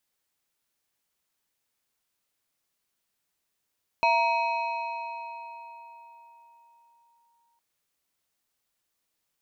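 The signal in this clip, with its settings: FM tone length 3.56 s, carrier 936 Hz, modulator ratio 1.72, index 1, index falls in 3.36 s linear, decay 4.23 s, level -18 dB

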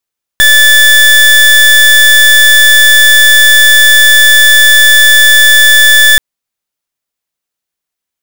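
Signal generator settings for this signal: pulse 1740 Hz, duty 30% -3.5 dBFS 5.78 s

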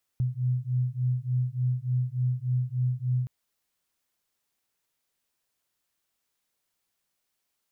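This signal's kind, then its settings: beating tones 124 Hz, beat 3.4 Hz, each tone -27.5 dBFS 3.07 s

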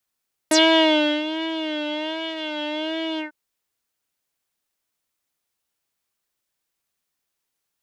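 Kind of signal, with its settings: synth patch with vibrato D#5, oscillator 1 triangle, interval -12 st, detune 3 cents, oscillator 2 level -4 dB, sub -1 dB, noise -27 dB, filter lowpass, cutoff 1400 Hz, Q 6.3, filter envelope 3 oct, filter decay 0.08 s, filter sustain 40%, attack 4.4 ms, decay 0.72 s, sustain -15 dB, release 0.12 s, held 2.68 s, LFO 1.3 Hz, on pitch 71 cents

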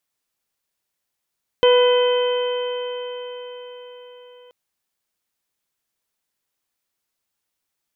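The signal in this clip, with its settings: stretched partials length 2.88 s, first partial 492 Hz, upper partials -10/-18.5/-19.5/-19/-9.5 dB, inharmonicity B 0.0026, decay 4.95 s, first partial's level -10.5 dB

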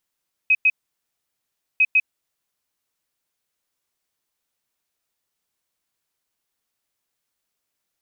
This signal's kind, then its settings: beep pattern sine 2530 Hz, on 0.05 s, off 0.10 s, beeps 2, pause 1.10 s, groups 2, -12 dBFS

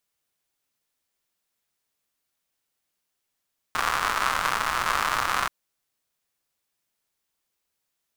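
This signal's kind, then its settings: rain from filtered ticks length 1.73 s, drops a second 190, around 1200 Hz, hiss -14 dB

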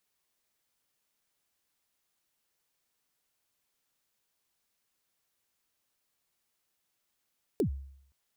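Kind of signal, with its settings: kick drum length 0.52 s, from 480 Hz, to 68 Hz, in 97 ms, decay 0.68 s, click on, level -22 dB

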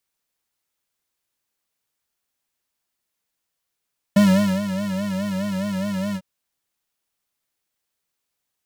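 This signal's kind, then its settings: synth patch with vibrato G3, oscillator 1 square, oscillator 2 square, interval +19 st, sub -13 dB, filter highpass, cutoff 110 Hz, Q 2.3, filter envelope 0.5 oct, attack 7 ms, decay 0.45 s, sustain -11 dB, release 0.06 s, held 1.99 s, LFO 4.8 Hz, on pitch 92 cents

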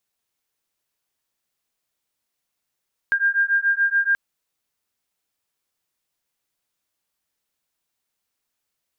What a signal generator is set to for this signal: beating tones 1600 Hz, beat 7 Hz, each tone -20 dBFS 1.03 s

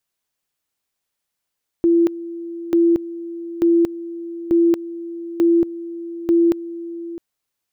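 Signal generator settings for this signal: two-level tone 338 Hz -11 dBFS, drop 16 dB, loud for 0.23 s, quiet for 0.66 s, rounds 6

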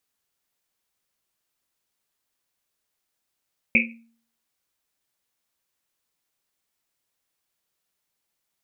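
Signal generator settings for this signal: Risset drum, pitch 230 Hz, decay 0.53 s, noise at 2400 Hz, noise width 420 Hz, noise 65%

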